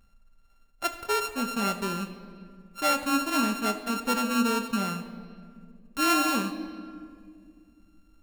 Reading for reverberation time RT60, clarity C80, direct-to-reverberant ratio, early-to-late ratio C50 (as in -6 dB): 2.1 s, 11.0 dB, 5.5 dB, 10.0 dB